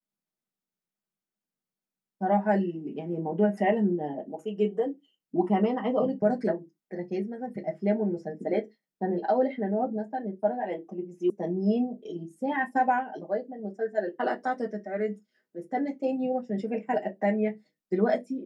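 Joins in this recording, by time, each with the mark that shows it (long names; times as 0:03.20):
0:11.30: cut off before it has died away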